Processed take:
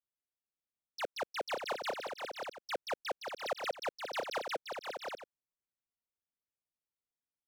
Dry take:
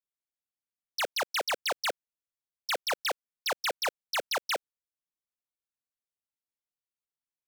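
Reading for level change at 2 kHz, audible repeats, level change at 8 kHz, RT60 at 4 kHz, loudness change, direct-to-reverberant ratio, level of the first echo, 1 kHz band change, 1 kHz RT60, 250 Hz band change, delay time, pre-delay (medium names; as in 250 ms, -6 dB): -8.0 dB, 3, -13.0 dB, no reverb, -8.0 dB, no reverb, -5.0 dB, -4.5 dB, no reverb, -1.0 dB, 525 ms, no reverb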